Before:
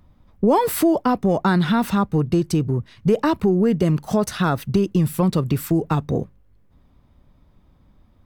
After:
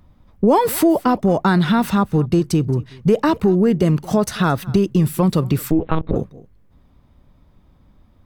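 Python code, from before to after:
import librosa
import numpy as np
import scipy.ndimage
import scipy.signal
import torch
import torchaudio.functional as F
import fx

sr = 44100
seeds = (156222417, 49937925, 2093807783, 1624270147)

y = x + 10.0 ** (-22.0 / 20.0) * np.pad(x, (int(222 * sr / 1000.0), 0))[:len(x)]
y = fx.lpc_monotone(y, sr, seeds[0], pitch_hz=160.0, order=8, at=(5.71, 6.16))
y = y * librosa.db_to_amplitude(2.5)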